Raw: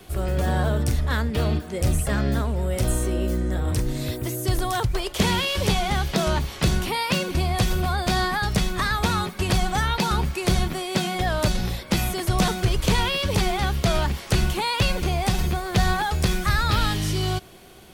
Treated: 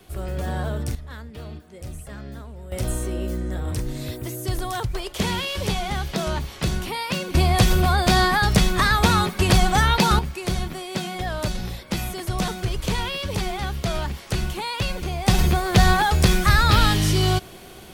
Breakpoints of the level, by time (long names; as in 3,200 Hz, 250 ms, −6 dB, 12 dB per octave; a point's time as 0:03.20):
−4.5 dB
from 0:00.95 −14 dB
from 0:02.72 −3 dB
from 0:07.34 +5 dB
from 0:10.19 −4 dB
from 0:15.28 +5 dB